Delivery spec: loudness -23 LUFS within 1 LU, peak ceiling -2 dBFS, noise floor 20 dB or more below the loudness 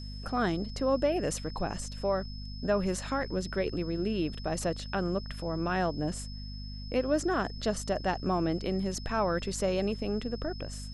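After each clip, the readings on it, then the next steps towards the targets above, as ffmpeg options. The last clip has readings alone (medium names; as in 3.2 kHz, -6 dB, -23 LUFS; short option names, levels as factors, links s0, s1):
hum 50 Hz; highest harmonic 250 Hz; hum level -38 dBFS; steady tone 5.2 kHz; tone level -47 dBFS; loudness -31.5 LUFS; peak level -15.0 dBFS; loudness target -23.0 LUFS
-> -af "bandreject=f=50:t=h:w=4,bandreject=f=100:t=h:w=4,bandreject=f=150:t=h:w=4,bandreject=f=200:t=h:w=4,bandreject=f=250:t=h:w=4"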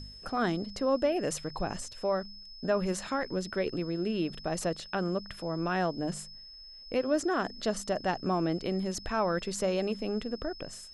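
hum not found; steady tone 5.2 kHz; tone level -47 dBFS
-> -af "bandreject=f=5200:w=30"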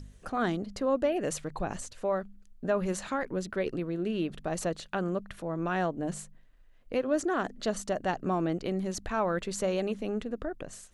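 steady tone not found; loudness -32.0 LUFS; peak level -15.5 dBFS; loudness target -23.0 LUFS
-> -af "volume=2.82"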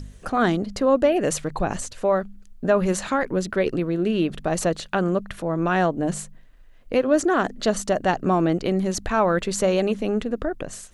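loudness -23.0 LUFS; peak level -6.5 dBFS; noise floor -47 dBFS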